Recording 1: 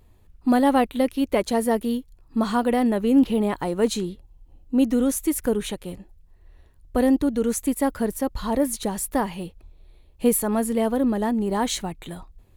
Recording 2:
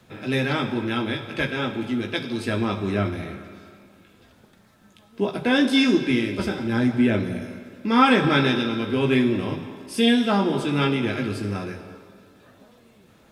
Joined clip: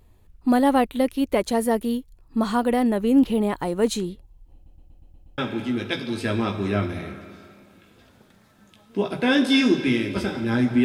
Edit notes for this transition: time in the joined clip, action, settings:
recording 1
4.54 s: stutter in place 0.12 s, 7 plays
5.38 s: go over to recording 2 from 1.61 s

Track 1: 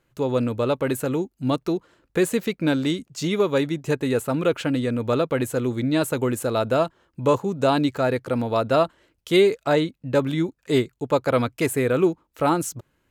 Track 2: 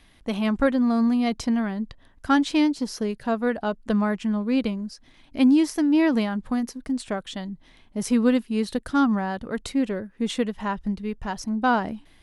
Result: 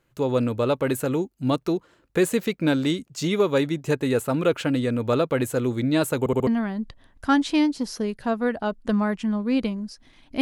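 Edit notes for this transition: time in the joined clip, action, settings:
track 1
6.19 s: stutter in place 0.07 s, 4 plays
6.47 s: go over to track 2 from 1.48 s

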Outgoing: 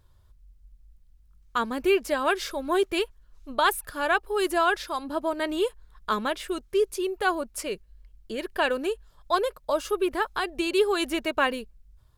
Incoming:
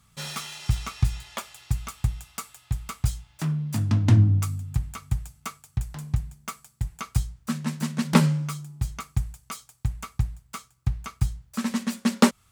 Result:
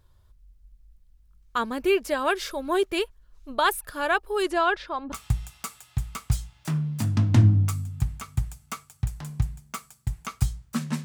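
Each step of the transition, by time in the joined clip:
outgoing
4.42–5.12 s: low-pass 8.6 kHz -> 1.7 kHz
5.12 s: go over to incoming from 1.86 s

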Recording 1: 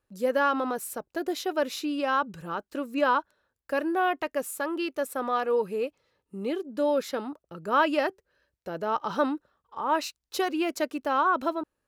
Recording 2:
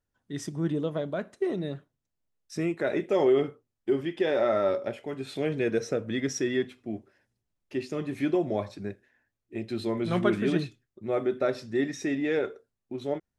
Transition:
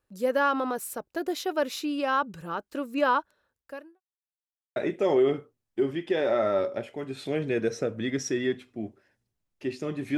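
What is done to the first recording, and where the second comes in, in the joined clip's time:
recording 1
3.50–4.01 s: fade out quadratic
4.01–4.76 s: mute
4.76 s: go over to recording 2 from 2.86 s

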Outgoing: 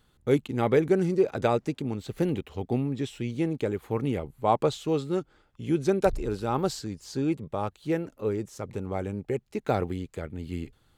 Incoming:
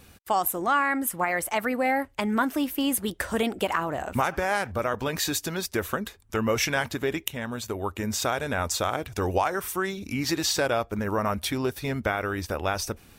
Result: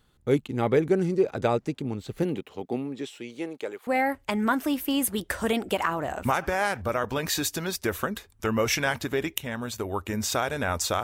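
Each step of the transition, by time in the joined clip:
outgoing
2.23–3.87 s: high-pass 150 Hz -> 640 Hz
3.87 s: go over to incoming from 1.77 s

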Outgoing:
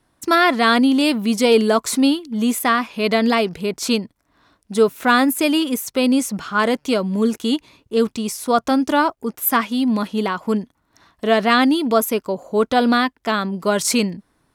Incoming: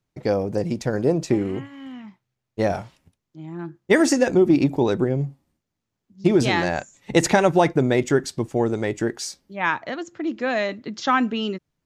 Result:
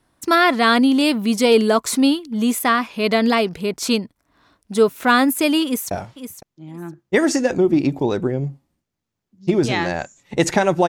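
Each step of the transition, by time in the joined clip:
outgoing
5.65–5.91 s: echo throw 510 ms, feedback 15%, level -11 dB
5.91 s: go over to incoming from 2.68 s

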